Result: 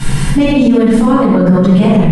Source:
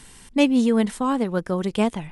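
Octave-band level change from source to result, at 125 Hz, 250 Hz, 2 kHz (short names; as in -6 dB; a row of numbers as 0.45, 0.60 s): +20.0, +12.5, +8.5 dB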